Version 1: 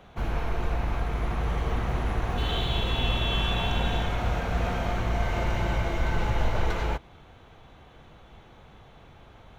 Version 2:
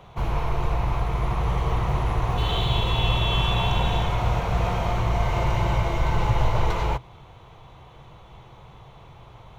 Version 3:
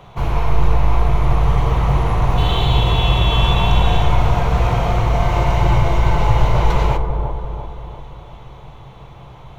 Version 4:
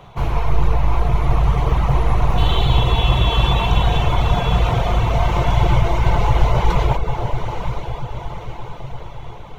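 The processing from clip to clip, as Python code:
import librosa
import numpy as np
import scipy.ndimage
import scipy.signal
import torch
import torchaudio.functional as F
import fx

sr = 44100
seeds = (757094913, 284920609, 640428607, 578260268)

y1 = fx.graphic_eq_31(x, sr, hz=(125, 250, 1000, 1600), db=(9, -10, 7, -7))
y1 = F.gain(torch.from_numpy(y1), 3.0).numpy()
y2 = fx.echo_wet_lowpass(y1, sr, ms=342, feedback_pct=51, hz=920.0, wet_db=-5.0)
y2 = fx.room_shoebox(y2, sr, seeds[0], volume_m3=290.0, walls='mixed', distance_m=0.33)
y2 = F.gain(torch.from_numpy(y2), 5.0).numpy()
y3 = fx.echo_diffused(y2, sr, ms=916, feedback_pct=51, wet_db=-8.0)
y3 = fx.dereverb_blind(y3, sr, rt60_s=0.62)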